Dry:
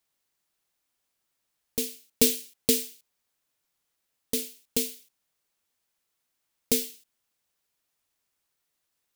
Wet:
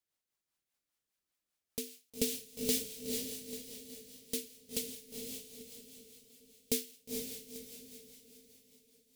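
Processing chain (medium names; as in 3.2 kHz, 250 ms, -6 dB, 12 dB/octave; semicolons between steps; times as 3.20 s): echo that smears into a reverb 484 ms, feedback 44%, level -3 dB; rotary cabinet horn 5 Hz; trim -7 dB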